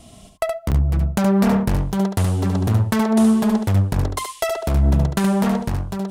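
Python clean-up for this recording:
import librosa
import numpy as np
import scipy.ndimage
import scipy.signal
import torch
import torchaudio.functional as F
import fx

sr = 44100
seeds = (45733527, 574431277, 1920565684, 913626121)

y = fx.fix_interpolate(x, sr, at_s=(0.71, 1.92), length_ms=7.8)
y = fx.fix_echo_inverse(y, sr, delay_ms=72, level_db=-6.0)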